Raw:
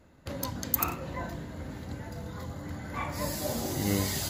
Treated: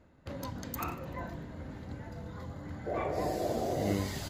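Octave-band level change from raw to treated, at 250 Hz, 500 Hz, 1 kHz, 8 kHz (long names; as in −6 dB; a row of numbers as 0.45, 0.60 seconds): −2.5, +2.5, −0.5, −12.0 decibels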